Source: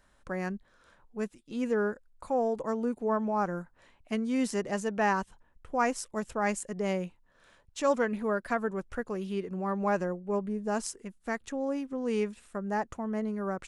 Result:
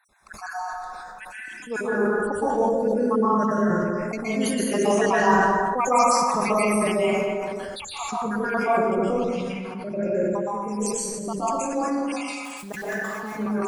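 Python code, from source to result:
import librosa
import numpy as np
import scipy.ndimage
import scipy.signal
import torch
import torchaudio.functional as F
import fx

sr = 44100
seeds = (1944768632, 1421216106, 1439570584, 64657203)

y = fx.spec_dropout(x, sr, seeds[0], share_pct=75)
y = fx.env_lowpass_down(y, sr, base_hz=1300.0, full_db=-28.0, at=(8.72, 10.03))
y = fx.low_shelf(y, sr, hz=110.0, db=-7.5)
y = fx.hpss(y, sr, part='percussive', gain_db=7)
y = fx.high_shelf(y, sr, hz=5000.0, db=6.5)
y = fx.quant_dither(y, sr, seeds[1], bits=8, dither='none', at=(12.41, 13.23))
y = y + 10.0 ** (-13.0 / 20.0) * np.pad(y, (int(226 * sr / 1000.0), 0))[:len(y)]
y = fx.rev_plate(y, sr, seeds[2], rt60_s=1.5, hf_ratio=0.4, predelay_ms=110, drr_db=-8.5)
y = fx.sustainer(y, sr, db_per_s=21.0)
y = y * librosa.db_to_amplitude(-2.0)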